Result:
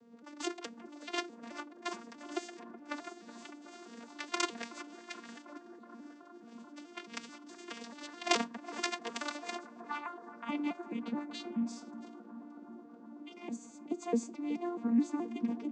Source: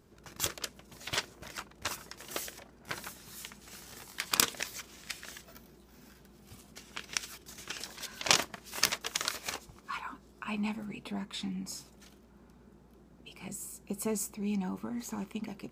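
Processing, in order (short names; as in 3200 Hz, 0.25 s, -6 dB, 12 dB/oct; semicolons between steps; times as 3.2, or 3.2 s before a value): arpeggiated vocoder major triad, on A#3, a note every 0.214 s; on a send: analogue delay 0.373 s, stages 4096, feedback 82%, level -15 dB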